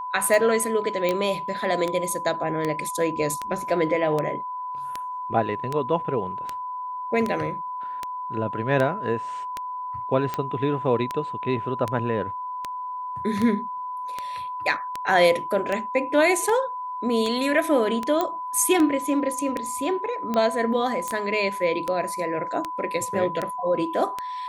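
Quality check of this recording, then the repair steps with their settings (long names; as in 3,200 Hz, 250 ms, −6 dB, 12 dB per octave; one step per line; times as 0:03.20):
scratch tick 78 rpm
whistle 1,000 Hz −29 dBFS
0:01.09: click −11 dBFS
0:18.21: click −11 dBFS
0:21.08: click −14 dBFS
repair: click removal
notch filter 1,000 Hz, Q 30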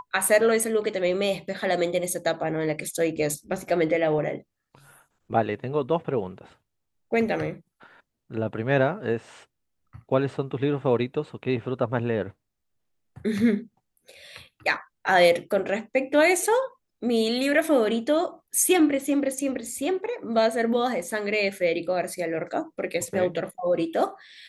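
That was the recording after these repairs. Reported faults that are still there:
none of them is left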